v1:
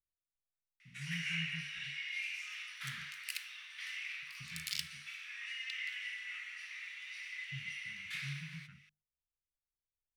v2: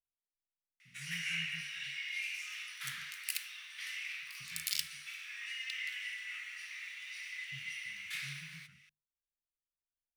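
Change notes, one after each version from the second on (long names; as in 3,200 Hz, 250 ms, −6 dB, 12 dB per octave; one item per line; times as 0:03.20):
speech −7.0 dB
master: add high-shelf EQ 7,500 Hz +11.5 dB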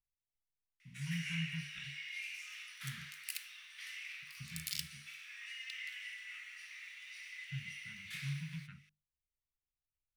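speech +11.0 dB
background −5.0 dB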